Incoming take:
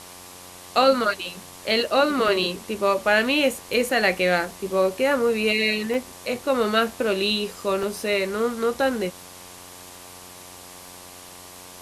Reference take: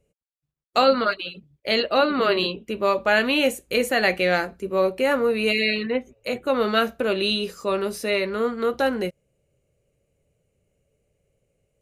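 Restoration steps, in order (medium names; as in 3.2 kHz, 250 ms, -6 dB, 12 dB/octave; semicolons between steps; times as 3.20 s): de-hum 90.1 Hz, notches 13; interpolate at 1.14/2.28/3.54/5.94/6.39/7.83 s, 1.3 ms; noise reduction 29 dB, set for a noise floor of -43 dBFS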